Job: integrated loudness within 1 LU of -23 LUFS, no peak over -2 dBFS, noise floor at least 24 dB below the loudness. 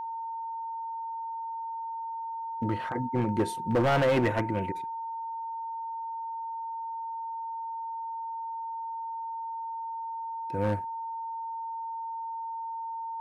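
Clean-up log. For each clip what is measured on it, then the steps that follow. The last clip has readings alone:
clipped samples 0.9%; clipping level -20.0 dBFS; steady tone 910 Hz; tone level -33 dBFS; loudness -33.0 LUFS; peak level -20.0 dBFS; loudness target -23.0 LUFS
-> clip repair -20 dBFS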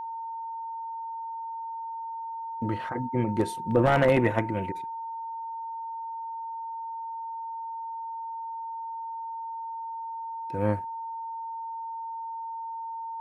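clipped samples 0.0%; steady tone 910 Hz; tone level -33 dBFS
-> band-stop 910 Hz, Q 30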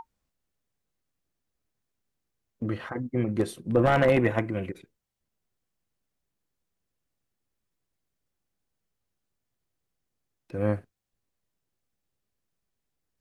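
steady tone not found; loudness -26.5 LUFS; peak level -10.5 dBFS; loudness target -23.0 LUFS
-> trim +3.5 dB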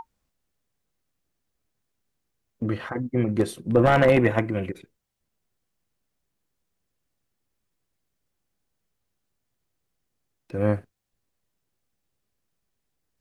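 loudness -23.0 LUFS; peak level -7.0 dBFS; noise floor -79 dBFS

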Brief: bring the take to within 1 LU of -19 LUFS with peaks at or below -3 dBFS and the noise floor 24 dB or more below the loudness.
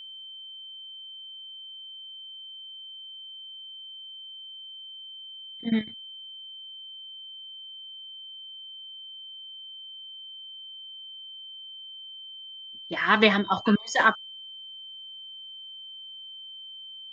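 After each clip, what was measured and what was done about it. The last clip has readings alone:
steady tone 3.1 kHz; tone level -40 dBFS; loudness -32.0 LUFS; peak level -4.5 dBFS; loudness target -19.0 LUFS
-> band-stop 3.1 kHz, Q 30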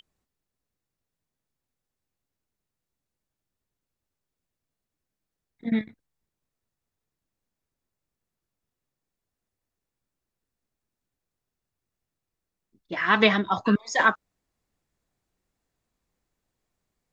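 steady tone not found; loudness -23.0 LUFS; peak level -5.0 dBFS; loudness target -19.0 LUFS
-> trim +4 dB; peak limiter -3 dBFS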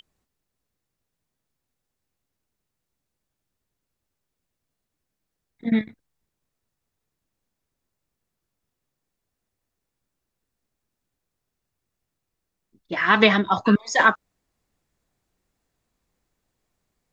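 loudness -19.5 LUFS; peak level -3.0 dBFS; noise floor -83 dBFS

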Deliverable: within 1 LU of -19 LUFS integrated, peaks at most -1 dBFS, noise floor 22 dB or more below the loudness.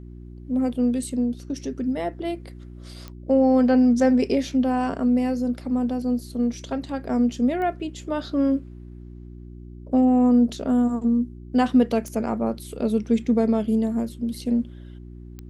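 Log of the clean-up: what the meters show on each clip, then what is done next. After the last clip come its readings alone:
clicks found 4; hum 60 Hz; highest harmonic 360 Hz; hum level -38 dBFS; loudness -23.0 LUFS; peak level -9.0 dBFS; loudness target -19.0 LUFS
-> de-click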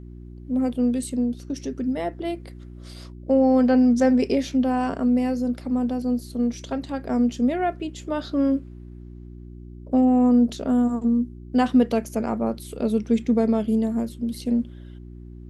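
clicks found 0; hum 60 Hz; highest harmonic 360 Hz; hum level -38 dBFS
-> de-hum 60 Hz, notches 6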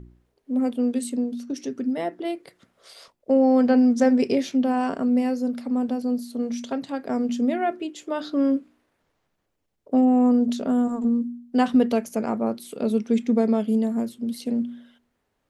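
hum not found; loudness -23.5 LUFS; peak level -9.0 dBFS; loudness target -19.0 LUFS
-> trim +4.5 dB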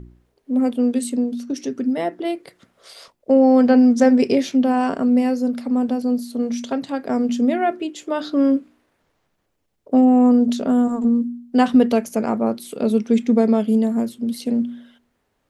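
loudness -19.0 LUFS; peak level -4.5 dBFS; noise floor -71 dBFS

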